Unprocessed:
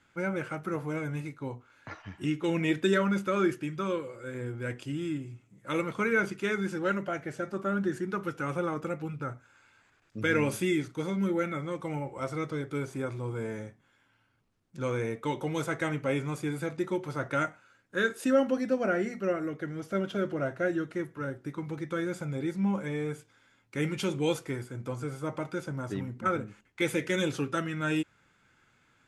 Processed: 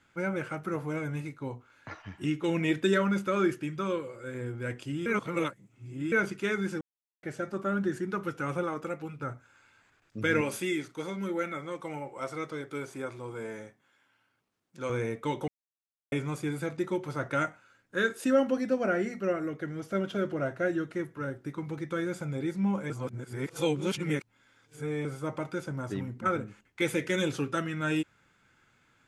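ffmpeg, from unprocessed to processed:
-filter_complex "[0:a]asettb=1/sr,asplit=3[s0][s1][s2];[s0]atrim=end=8.634[s3];[s1]atrim=start=8.63:end=9.23,asetpts=PTS-STARTPTS,afade=t=in:d=0.004:c=qsin,afade=t=out:st=0.596:d=0.004:c=qsin,equalizer=f=99:t=o:w=2.4:g=-7[s4];[s2]atrim=start=9.226[s5];[s3][s4]acrossfade=d=0.004:c1=hsin:c2=qsin[s6];[s6][s5]acrossfade=d=0.004:c1=qsin:c2=hsin,asettb=1/sr,asplit=3[s7][s8][s9];[s7]atrim=end=10.414[s10];[s8]atrim=start=10.41:end=14.9,asetpts=PTS-STARTPTS,afade=t=in:d=0.004:c=qsin,afade=t=out:st=4.486:d=0.004:c=qsin,highpass=f=370:p=1[s11];[s9]atrim=start=14.896[s12];[s10][s11]acrossfade=d=0.004:c1=hsin:c2=qsin[s13];[s13][s12]acrossfade=d=0.004:c1=qsin:c2=hsin,asplit=9[s14][s15][s16][s17][s18][s19][s20][s21][s22];[s14]atrim=end=5.062[s23];[s15]atrim=start=5.058:end=6.122,asetpts=PTS-STARTPTS,areverse[s24];[s16]atrim=start=6.118:end=6.81,asetpts=PTS-STARTPTS,afade=t=out:st=0.688:d=0.004:c=hsin[s25];[s17]atrim=start=6.81:end=7.23,asetpts=PTS-STARTPTS,volume=0[s26];[s18]atrim=start=7.23:end=15.48,asetpts=PTS-STARTPTS,afade=t=in:d=0.004:c=hsin,afade=t=out:st=8.246:d=0.004:c=hsin[s27];[s19]atrim=start=15.48:end=16.12,asetpts=PTS-STARTPTS,volume=0[s28];[s20]atrim=start=16.12:end=22.902,asetpts=PTS-STARTPTS,afade=t=in:d=0.004:c=hsin[s29];[s21]atrim=start=22.898:end=25.052,asetpts=PTS-STARTPTS,areverse[s30];[s22]atrim=start=25.048[s31];[s23][s24]acrossfade=d=0.004:c1=hsin:c2=hsin[s32];[s25][s26][s27][s28][s29]concat=n=5:v=0:a=1[s33];[s32][s33]acrossfade=d=0.004:c1=hsin:c2=hsin[s34];[s34][s30]acrossfade=d=0.004:c1=hsin:c2=hsin[s35];[s35][s31]acrossfade=d=0.004:c1=hsin:c2=hsin"

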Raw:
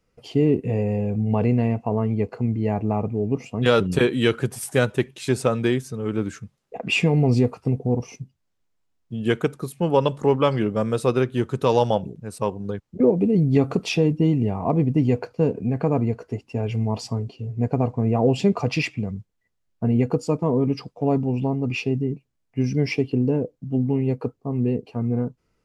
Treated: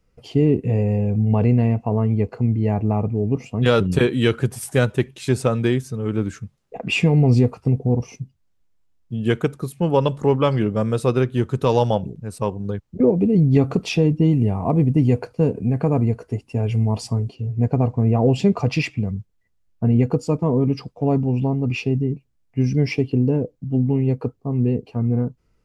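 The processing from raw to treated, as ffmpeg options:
-filter_complex "[0:a]asettb=1/sr,asplit=3[s0][s1][s2];[s0]atrim=end=14.314[s3];[s1]atrim=start=14.31:end=17.35,asetpts=PTS-STARTPTS,afade=t=in:d=0.004:c=qsin,afade=t=out:st=3.036:d=0.004:c=qsin,equalizer=f=9600:t=o:w=0.47:g=10.5[s4];[s2]atrim=start=17.346[s5];[s3][s4]acrossfade=d=0.004:c1=hsin:c2=qsin[s6];[s6][s5]acrossfade=d=0.004:c1=qsin:c2=hsin,lowshelf=f=120:g=10"

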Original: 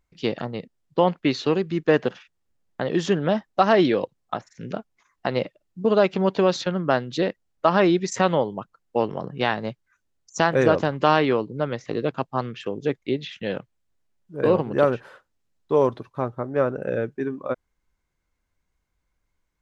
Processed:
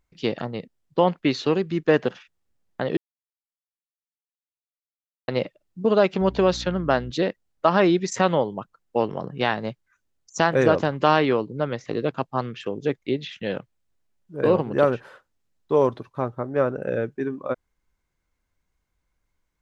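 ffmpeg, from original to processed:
-filter_complex "[0:a]asettb=1/sr,asplit=3[s0][s1][s2];[s0]atrim=end=6.214[s3];[s1]atrim=start=6.21:end=7.11,asetpts=PTS-STARTPTS,afade=t=in:d=0.004:c=qsin,afade=t=out:st=0.896:d=0.004:c=qsin,aeval=exprs='val(0)+0.0141*(sin(2*PI*60*n/s)+sin(2*PI*2*60*n/s)/2+sin(2*PI*3*60*n/s)/3+sin(2*PI*4*60*n/s)/4+sin(2*PI*5*60*n/s)/5)':c=same[s4];[s2]atrim=start=7.106[s5];[s3][s4]acrossfade=d=0.004:c1=hsin:c2=qsin[s6];[s6][s5]acrossfade=d=0.004:c1=qsin:c2=hsin,asplit=3[s7][s8][s9];[s7]atrim=end=2.97,asetpts=PTS-STARTPTS,afade=t=out:st=2.966:d=0.004:c=hsin[s10];[s8]atrim=start=2.97:end=5.28,asetpts=PTS-STARTPTS,volume=0[s11];[s9]atrim=start=5.28,asetpts=PTS-STARTPTS,afade=t=in:d=0.004:c=hsin[s12];[s10][s11][s12]concat=n=3:v=0:a=1"

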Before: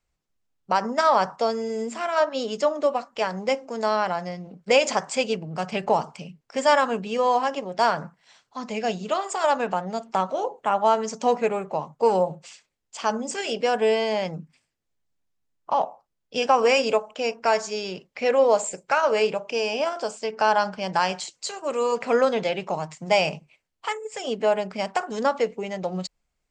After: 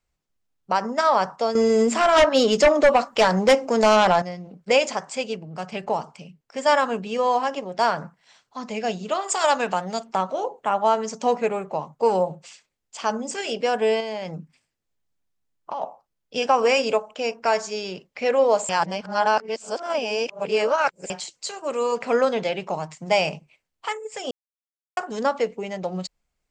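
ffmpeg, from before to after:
-filter_complex "[0:a]asettb=1/sr,asplit=3[s0][s1][s2];[s0]atrim=end=1.554[s3];[s1]atrim=start=1.55:end=4.22,asetpts=PTS-STARTPTS,afade=t=in:d=0.004:c=qsin,afade=t=out:st=2.666:d=0.004:c=qsin,aeval=exprs='0.316*sin(PI/2*2.24*val(0)/0.316)':c=same[s4];[s2]atrim=start=4.216[s5];[s3][s4]acrossfade=d=0.004:c1=hsin:c2=qsin[s6];[s6][s5]acrossfade=d=0.004:c1=qsin:c2=hsin,asettb=1/sr,asplit=3[s7][s8][s9];[s7]atrim=end=9.284[s10];[s8]atrim=start=9.28:end=10.03,asetpts=PTS-STARTPTS,afade=t=in:d=0.004:c=qsin,afade=t=out:st=0.746:d=0.004:c=qsin,highshelf=f=2000:g=9.5[s11];[s9]atrim=start=10.026[s12];[s10][s11]acrossfade=d=0.004:c1=hsin:c2=qsin[s13];[s13][s12]acrossfade=d=0.004:c1=qsin:c2=hsin,asettb=1/sr,asplit=3[s14][s15][s16];[s14]atrim=end=14.004[s17];[s15]atrim=start=14:end=15.82,asetpts=PTS-STARTPTS,afade=t=in:d=0.004:c=qsin,afade=t=out:st=1.816:d=0.004:c=qsin,acompressor=threshold=0.0501:ratio=6:attack=3.2:release=140:knee=1:detection=peak[s18];[s16]atrim=start=15.816[s19];[s17][s18]acrossfade=d=0.004:c1=hsin:c2=qsin[s20];[s20][s19]acrossfade=d=0.004:c1=qsin:c2=hsin,asplit=7[s21][s22][s23][s24][s25][s26][s27];[s21]atrim=end=4.862[s28];[s22]atrim=start=4.858:end=6.662,asetpts=PTS-STARTPTS,volume=0.668[s29];[s23]atrim=start=6.658:end=18.692[s30];[s24]atrim=start=18.688:end=21.102,asetpts=PTS-STARTPTS,areverse[s31];[s25]atrim=start=21.098:end=24.31,asetpts=PTS-STARTPTS,afade=t=out:st=3.208:d=0.004:c=hsin[s32];[s26]atrim=start=24.31:end=24.97,asetpts=PTS-STARTPTS,volume=0[s33];[s27]atrim=start=24.97,asetpts=PTS-STARTPTS,afade=t=in:d=0.004:c=hsin[s34];[s28][s29]acrossfade=d=0.004:c1=hsin:c2=hsin[s35];[s35][s30]acrossfade=d=0.004:c1=hsin:c2=hsin[s36];[s36][s31]acrossfade=d=0.004:c1=hsin:c2=hsin[s37];[s32][s33][s34]concat=n=3:v=0:a=1[s38];[s37][s38]acrossfade=d=0.004:c1=hsin:c2=hsin"

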